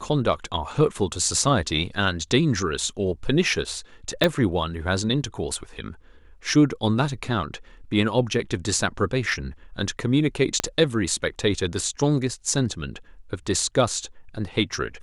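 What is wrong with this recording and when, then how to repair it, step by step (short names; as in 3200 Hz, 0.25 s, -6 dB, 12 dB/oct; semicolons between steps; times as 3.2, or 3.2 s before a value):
4.24 pop -5 dBFS
10.6 pop -7 dBFS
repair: de-click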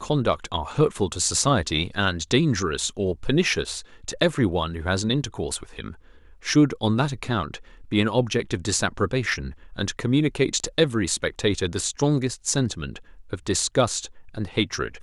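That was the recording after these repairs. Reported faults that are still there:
4.24 pop
10.6 pop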